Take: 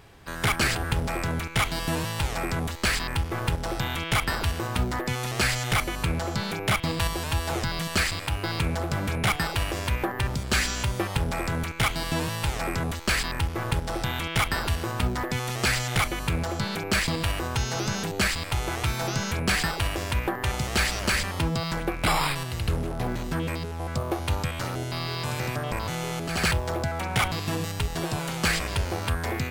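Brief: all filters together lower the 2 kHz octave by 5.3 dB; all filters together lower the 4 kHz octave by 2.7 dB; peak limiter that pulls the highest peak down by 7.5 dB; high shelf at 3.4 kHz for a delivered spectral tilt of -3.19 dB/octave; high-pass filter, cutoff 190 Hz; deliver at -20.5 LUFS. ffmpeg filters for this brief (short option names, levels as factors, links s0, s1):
-af "highpass=190,equalizer=f=2000:t=o:g=-7.5,highshelf=f=3400:g=8,equalizer=f=4000:t=o:g=-7,volume=3.16,alimiter=limit=0.422:level=0:latency=1"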